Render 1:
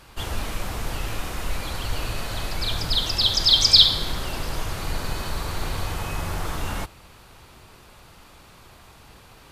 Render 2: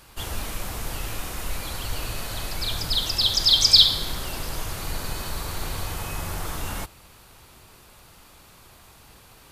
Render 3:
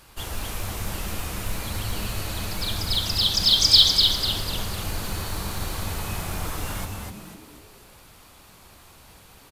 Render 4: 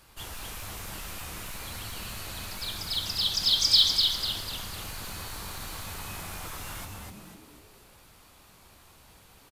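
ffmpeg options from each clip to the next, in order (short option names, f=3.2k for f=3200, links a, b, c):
-af "highshelf=f=7.2k:g=10,volume=-3dB"
-filter_complex "[0:a]acrusher=bits=7:mode=log:mix=0:aa=0.000001,asplit=2[a][b];[b]asplit=5[c][d][e][f][g];[c]adelay=248,afreqshift=-110,volume=-4.5dB[h];[d]adelay=496,afreqshift=-220,volume=-12dB[i];[e]adelay=744,afreqshift=-330,volume=-19.6dB[j];[f]adelay=992,afreqshift=-440,volume=-27.1dB[k];[g]adelay=1240,afreqshift=-550,volume=-34.6dB[l];[h][i][j][k][l]amix=inputs=5:normalize=0[m];[a][m]amix=inputs=2:normalize=0,volume=-1dB"
-filter_complex "[0:a]acrossover=split=800[a][b];[a]asoftclip=type=tanh:threshold=-33.5dB[c];[b]asplit=2[d][e];[e]adelay=19,volume=-12dB[f];[d][f]amix=inputs=2:normalize=0[g];[c][g]amix=inputs=2:normalize=0,volume=-5.5dB"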